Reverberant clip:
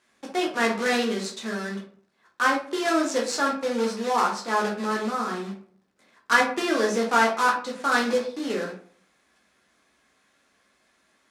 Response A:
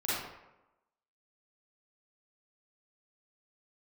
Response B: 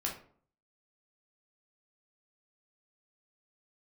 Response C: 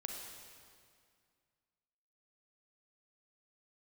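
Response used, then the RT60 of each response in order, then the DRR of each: B; 0.95 s, 0.50 s, 2.1 s; -10.5 dB, -2.0 dB, 1.0 dB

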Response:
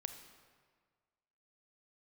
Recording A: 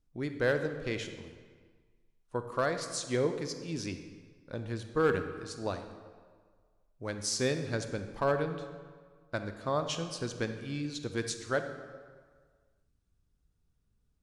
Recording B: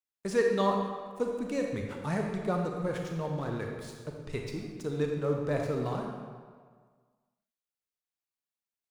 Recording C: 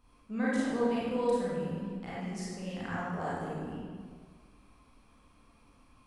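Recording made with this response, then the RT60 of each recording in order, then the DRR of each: A; 1.7 s, 1.7 s, 1.7 s; 7.5 dB, 1.5 dB, -8.5 dB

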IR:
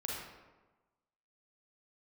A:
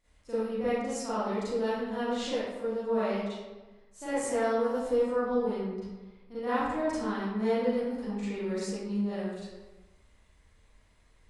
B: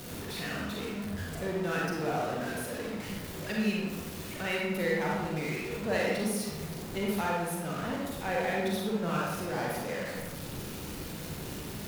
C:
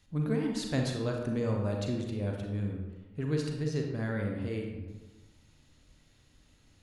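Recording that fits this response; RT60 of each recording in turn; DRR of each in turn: B; 1.2 s, 1.2 s, 1.2 s; -13.0 dB, -3.5 dB, 1.0 dB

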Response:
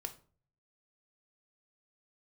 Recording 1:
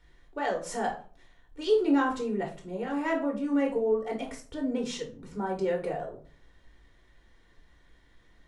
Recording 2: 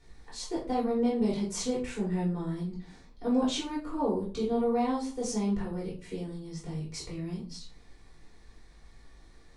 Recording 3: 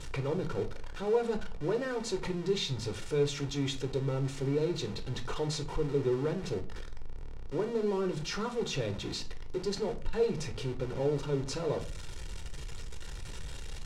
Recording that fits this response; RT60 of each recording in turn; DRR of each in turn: 3; 0.45 s, 0.45 s, 0.45 s; 0.5 dB, -7.0 dB, 6.5 dB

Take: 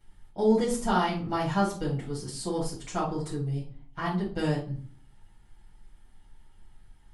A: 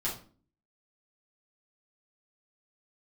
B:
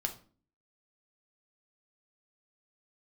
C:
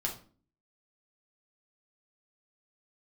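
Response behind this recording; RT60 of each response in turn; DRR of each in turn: A; 0.40 s, 0.40 s, 0.40 s; -8.0 dB, 4.0 dB, -1.5 dB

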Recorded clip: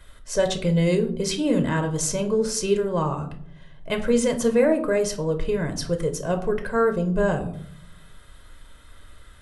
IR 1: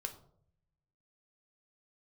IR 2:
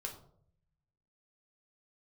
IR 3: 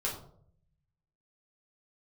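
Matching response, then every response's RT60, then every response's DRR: 1; 0.65 s, 0.65 s, 0.60 s; 5.5 dB, 1.0 dB, -4.5 dB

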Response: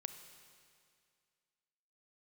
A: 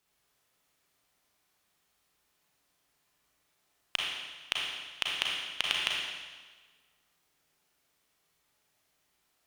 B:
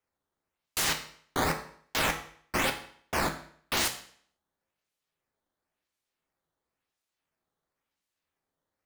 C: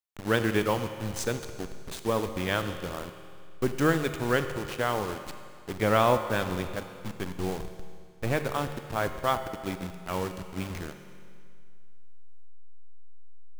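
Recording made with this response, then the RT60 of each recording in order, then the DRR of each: C; 1.4 s, 0.55 s, 2.2 s; -2.5 dB, 4.0 dB, 8.0 dB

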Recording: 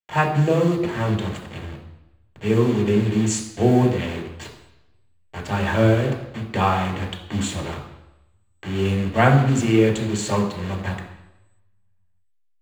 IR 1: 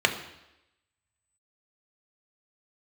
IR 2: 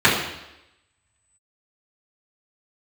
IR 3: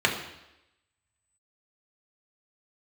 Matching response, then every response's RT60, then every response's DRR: 3; 0.90 s, 0.90 s, 0.90 s; 4.0 dB, -11.0 dB, -1.0 dB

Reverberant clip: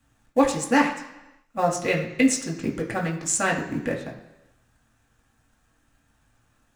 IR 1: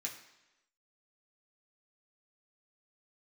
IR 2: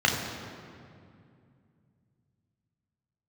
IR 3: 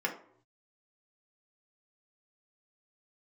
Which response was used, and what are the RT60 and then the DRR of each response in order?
1; 1.0 s, 2.4 s, 0.65 s; -2.0 dB, -1.0 dB, -0.5 dB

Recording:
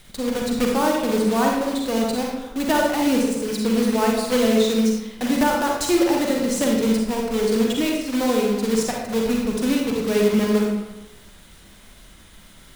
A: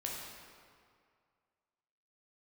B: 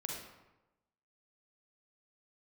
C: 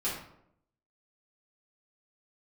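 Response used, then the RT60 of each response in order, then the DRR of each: B; 2.1 s, 1.0 s, 0.75 s; -3.0 dB, -1.0 dB, -10.0 dB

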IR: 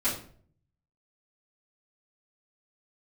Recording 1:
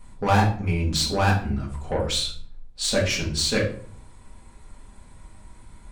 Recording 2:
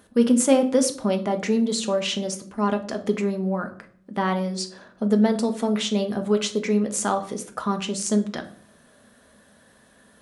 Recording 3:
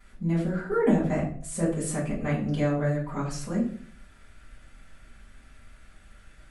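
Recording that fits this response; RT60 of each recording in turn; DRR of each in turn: 3; 0.50 s, 0.55 s, 0.50 s; -4.5 dB, 5.5 dB, -12.5 dB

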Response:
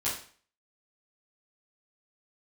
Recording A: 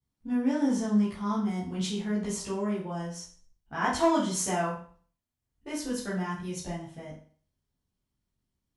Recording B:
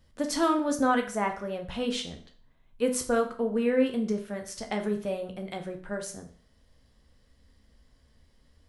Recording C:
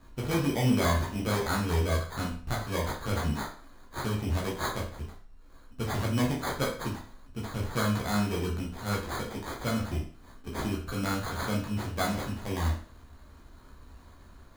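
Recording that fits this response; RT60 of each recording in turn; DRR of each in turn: A; 0.45 s, 0.45 s, 0.45 s; -10.0 dB, 3.5 dB, -3.5 dB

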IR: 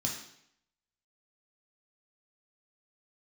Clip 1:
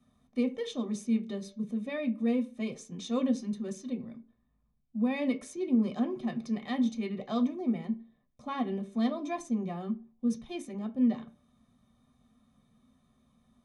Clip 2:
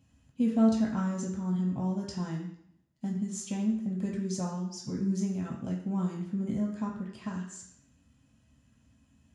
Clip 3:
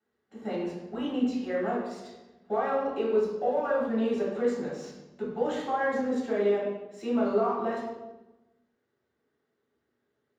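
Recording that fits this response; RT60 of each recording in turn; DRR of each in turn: 2; 0.45 s, 0.70 s, 1.1 s; 4.0 dB, -2.0 dB, -10.0 dB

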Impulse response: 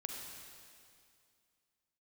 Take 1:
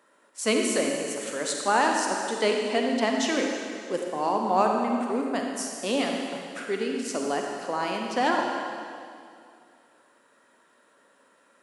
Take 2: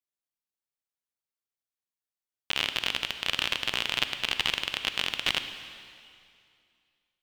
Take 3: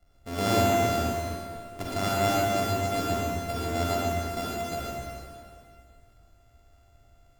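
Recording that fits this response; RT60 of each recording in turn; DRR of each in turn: 1; 2.3 s, 2.4 s, 2.3 s; 1.0 dB, 8.5 dB, -6.0 dB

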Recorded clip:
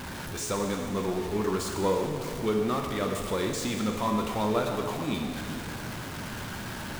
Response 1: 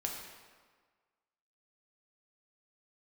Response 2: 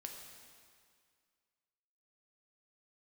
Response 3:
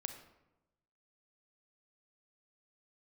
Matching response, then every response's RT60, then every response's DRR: 2; 1.5 s, 2.1 s, 1.0 s; -0.5 dB, 1.5 dB, 7.0 dB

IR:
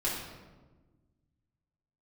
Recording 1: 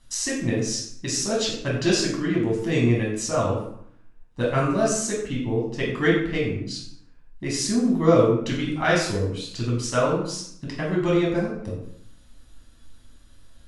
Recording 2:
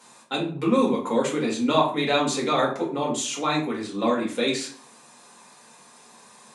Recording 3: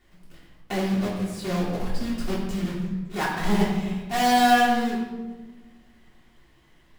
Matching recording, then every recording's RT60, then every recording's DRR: 3; 0.65 s, 0.45 s, 1.3 s; -4.0 dB, -4.5 dB, -8.0 dB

